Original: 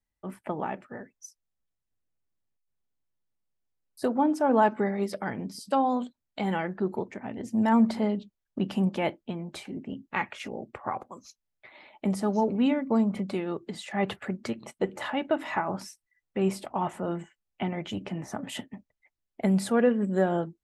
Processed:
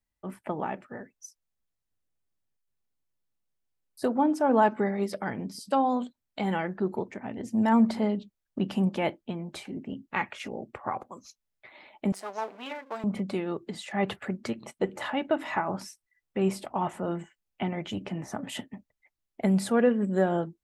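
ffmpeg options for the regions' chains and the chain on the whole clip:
-filter_complex "[0:a]asettb=1/sr,asplit=3[a][b][c];[a]atrim=end=12.124[d];[b]atrim=start=12.12:end=13.04,asetpts=PTS-STARTPTS,afade=t=in:d=0.004:c=qsin,afade=t=out:st=0.916:d=0.004:c=qsin,aeval=exprs='if(lt(val(0),0),0.251*val(0),val(0))':c=same,highpass=700[e];[c]atrim=start=13.036[f];[d][e]acrossfade=d=0.004:c1=hsin:c2=qsin[g];[g][f]acrossfade=d=0.004:c1=qsin:c2=hsin"

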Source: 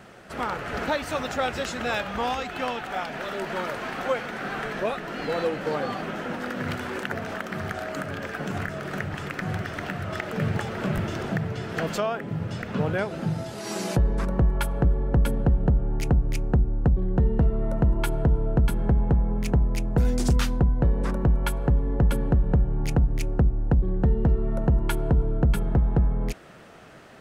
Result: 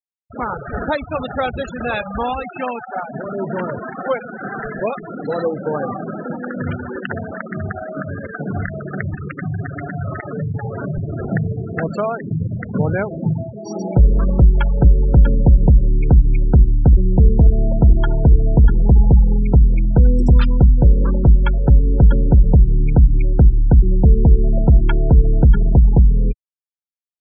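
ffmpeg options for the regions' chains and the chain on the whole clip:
-filter_complex "[0:a]asettb=1/sr,asplit=3[a][b][c];[a]atrim=end=3.144[d];[b]atrim=start=3.14:end=3.82,asetpts=PTS-STARTPTS,afade=t=in:d=0.004:c=qsin,afade=t=out:st=0.676:d=0.004:c=qsin,highpass=120,aemphasis=mode=reproduction:type=bsi,aeval=exprs='(mod(7.94*val(0)+1,2)-1)/7.94':c=same[e];[c]atrim=start=3.816[f];[d][e]acrossfade=d=0.004:c1=hsin:c2=qsin[g];[g][f]acrossfade=d=0.004:c1=qsin:c2=hsin,asettb=1/sr,asplit=3[h][i][j];[h]atrim=end=9.374[k];[i]atrim=start=9.37:end=11.19,asetpts=PTS-STARTPTS,afade=t=in:d=0.004:c=qsin,afade=t=out:st=1.816:d=0.004:c=qsin,aecho=1:1:7.2:0.54,atrim=end_sample=80262,acompressor=threshold=-26dB:ratio=12:attack=3.2:release=140:knee=1:detection=peak[l];[j]atrim=start=11.186[m];[k][l]acrossfade=d=0.004:c1=hsin:c2=qsin[n];[n][m]acrossfade=d=0.004:c1=qsin:c2=hsin,asettb=1/sr,asplit=3[o][p][q];[o]atrim=end=16.644[r];[p]atrim=start=16.64:end=19.17,asetpts=PTS-STARTPTS,afade=t=in:d=0.004:c=qsin,afade=t=out:st=2.526:d=0.004:c=qsin,asuperstop=centerf=2500:order=4:qfactor=3.1,aecho=1:1:71:0.211,atrim=end_sample=111573[s];[q]atrim=start=19.166[t];[r][s]acrossfade=d=0.004:c1=hsin:c2=qsin[u];[u][t]acrossfade=d=0.004:c1=qsin:c2=hsin,afftfilt=real='re*gte(hypot(re,im),0.0631)':imag='im*gte(hypot(re,im),0.0631)':win_size=1024:overlap=0.75,lowshelf=f=120:g=7,volume=5.5dB"

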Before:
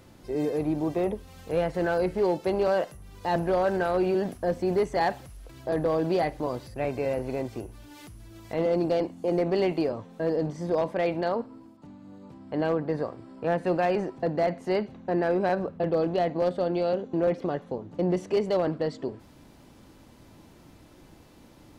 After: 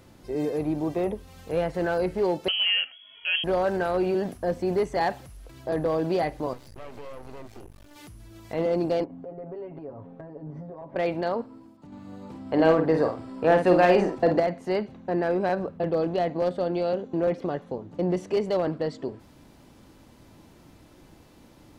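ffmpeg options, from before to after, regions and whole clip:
-filter_complex "[0:a]asettb=1/sr,asplit=3[a][b][c];[a]atrim=end=2.484[d];[b]atrim=start=2.48:end=3.44,asetpts=PTS-STARTPTS,afade=t=in:d=0.004:c=qsin,afade=t=out:st=0.956:d=0.004:c=qsin,highpass=f=110:p=1,lowpass=f=2.9k:t=q:w=0.5098,lowpass=f=2.9k:t=q:w=0.6013,lowpass=f=2.9k:t=q:w=0.9,lowpass=f=2.9k:t=q:w=2.563,afreqshift=-3400[e];[c]atrim=start=3.436[f];[d][e]acrossfade=d=0.004:c1=hsin:c2=qsin[g];[g][f]acrossfade=d=0.004:c1=qsin:c2=hsin,asettb=1/sr,asplit=3[h][i][j];[h]atrim=end=6.534[k];[i]atrim=start=6.53:end=7.96,asetpts=PTS-STARTPTS,afade=t=in:d=0.004:c=qsin,afade=t=out:st=1.426:d=0.004:c=qsin,aeval=exprs='max(val(0),0)':c=same,acompressor=threshold=-38dB:ratio=2.5:attack=3.2:release=140:knee=1:detection=peak[l];[j]atrim=start=7.956[m];[k][l]acrossfade=d=0.004:c1=hsin:c2=qsin[n];[n][m]acrossfade=d=0.004:c1=qsin:c2=hsin,asettb=1/sr,asplit=3[o][p][q];[o]atrim=end=9.044[r];[p]atrim=start=9.04:end=10.96,asetpts=PTS-STARTPTS,afade=t=in:d=0.004:c=qsin,afade=t=out:st=1.916:d=0.004:c=qsin,lowpass=1.2k,acompressor=threshold=-38dB:ratio=8:attack=3.2:release=140:knee=1:detection=peak,aecho=1:1:7.3:0.94,atrim=end_sample=84672[s];[q]atrim=start=10.956[t];[r][s]acrossfade=d=0.004:c1=hsin:c2=qsin[u];[u][t]acrossfade=d=0.004:c1=qsin:c2=hsin,asettb=1/sr,asplit=3[v][w][x];[v]atrim=end=11.924[y];[w]atrim=start=11.92:end=14.4,asetpts=PTS-STARTPTS,afade=t=in:d=0.004:c=qsin,afade=t=out:st=2.476:d=0.004:c=qsin,equalizer=f=150:w=1.6:g=-5.5,acontrast=73,asplit=2[z][aa];[aa]adelay=50,volume=-6dB[ab];[z][ab]amix=inputs=2:normalize=0,atrim=end_sample=109368[ac];[x]atrim=start=14.396[ad];[y][ac]acrossfade=d=0.004:c1=hsin:c2=qsin[ae];[ae][ad]acrossfade=d=0.004:c1=qsin:c2=hsin"

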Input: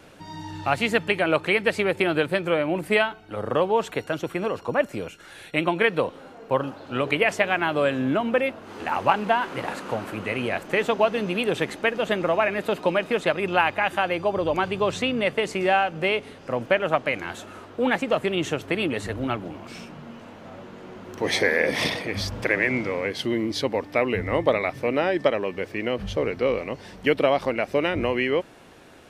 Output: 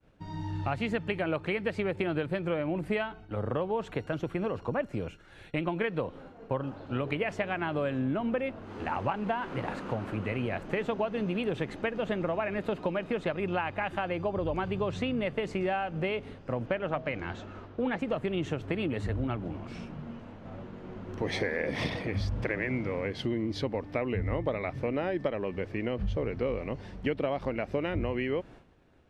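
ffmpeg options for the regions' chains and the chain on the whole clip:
-filter_complex "[0:a]asettb=1/sr,asplit=3[a][b][c];[a]atrim=end=16.664[d];[b]atrim=start=16.66:end=17.99,asetpts=PTS-STARTPTS,afade=t=in:d=0.004:c=qsin,afade=t=out:st=1.326:d=0.004:c=qsin,lowpass=f=6.6k:w=0.5412,lowpass=f=6.6k:w=1.3066,bandreject=f=159.7:t=h:w=4,bandreject=f=319.4:t=h:w=4,bandreject=f=479.1:t=h:w=4,bandreject=f=638.8:t=h:w=4[e];[c]atrim=start=17.986[f];[d][e]acrossfade=d=0.004:c1=hsin:c2=qsin[g];[g][f]acrossfade=d=0.004:c1=qsin:c2=hsin,agate=range=-33dB:threshold=-40dB:ratio=3:detection=peak,aemphasis=mode=reproduction:type=bsi,acompressor=threshold=-23dB:ratio=3,volume=-5dB"

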